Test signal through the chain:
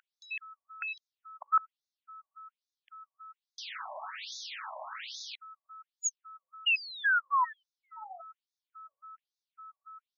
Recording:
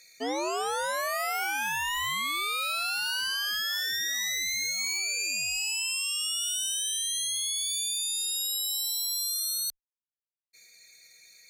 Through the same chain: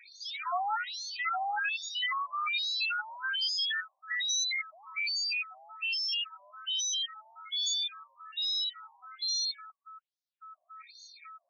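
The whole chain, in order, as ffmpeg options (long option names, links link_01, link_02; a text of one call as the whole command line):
ffmpeg -i in.wav -filter_complex "[0:a]bandreject=frequency=50:width_type=h:width=6,bandreject=frequency=100:width_type=h:width=6,bandreject=frequency=150:width_type=h:width=6,bandreject=frequency=200:width_type=h:width=6,bandreject=frequency=250:width_type=h:width=6,bandreject=frequency=300:width_type=h:width=6,bandreject=frequency=350:width_type=h:width=6,bandreject=frequency=400:width_type=h:width=6,bandreject=frequency=450:width_type=h:width=6,asplit=2[link_01][link_02];[link_02]alimiter=level_in=5dB:limit=-24dB:level=0:latency=1,volume=-5dB,volume=0dB[link_03];[link_01][link_03]amix=inputs=2:normalize=0,aeval=exprs='0.266*(cos(1*acos(clip(val(0)/0.266,-1,1)))-cos(1*PI/2))+0.0266*(cos(4*acos(clip(val(0)/0.266,-1,1)))-cos(4*PI/2))':channel_layout=same,aeval=exprs='clip(val(0),-1,0.075)':channel_layout=same,aeval=exprs='val(0)+0.00562*sin(2*PI*1300*n/s)':channel_layout=same,afftfilt=real='re*between(b*sr/1024,780*pow(4900/780,0.5+0.5*sin(2*PI*1.2*pts/sr))/1.41,780*pow(4900/780,0.5+0.5*sin(2*PI*1.2*pts/sr))*1.41)':imag='im*between(b*sr/1024,780*pow(4900/780,0.5+0.5*sin(2*PI*1.2*pts/sr))/1.41,780*pow(4900/780,0.5+0.5*sin(2*PI*1.2*pts/sr))*1.41)':win_size=1024:overlap=0.75" out.wav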